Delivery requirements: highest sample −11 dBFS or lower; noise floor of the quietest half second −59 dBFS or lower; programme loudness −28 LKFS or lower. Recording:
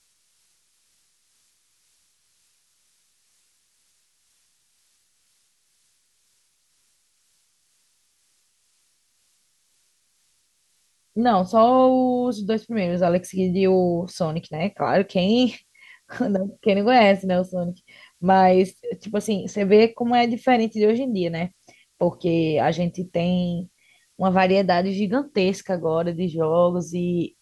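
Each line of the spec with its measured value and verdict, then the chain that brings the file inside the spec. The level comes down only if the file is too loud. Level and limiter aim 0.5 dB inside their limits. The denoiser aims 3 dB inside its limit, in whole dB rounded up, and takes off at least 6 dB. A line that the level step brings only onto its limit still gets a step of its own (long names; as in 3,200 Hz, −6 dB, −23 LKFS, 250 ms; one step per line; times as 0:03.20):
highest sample −6.0 dBFS: out of spec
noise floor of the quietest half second −66 dBFS: in spec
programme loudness −21.0 LKFS: out of spec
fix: level −7.5 dB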